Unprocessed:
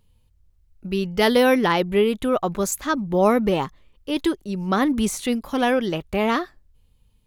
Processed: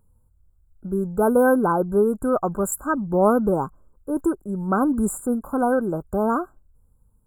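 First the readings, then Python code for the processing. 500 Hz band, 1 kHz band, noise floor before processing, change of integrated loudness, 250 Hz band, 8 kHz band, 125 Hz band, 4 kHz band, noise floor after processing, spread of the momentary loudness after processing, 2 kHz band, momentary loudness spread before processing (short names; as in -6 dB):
0.0 dB, 0.0 dB, -61 dBFS, -0.5 dB, 0.0 dB, -2.0 dB, 0.0 dB, under -40 dB, -61 dBFS, 10 LU, -5.5 dB, 11 LU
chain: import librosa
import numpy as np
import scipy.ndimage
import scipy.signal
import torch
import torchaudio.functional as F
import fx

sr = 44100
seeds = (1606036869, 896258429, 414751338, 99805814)

y = fx.brickwall_bandstop(x, sr, low_hz=1600.0, high_hz=7000.0)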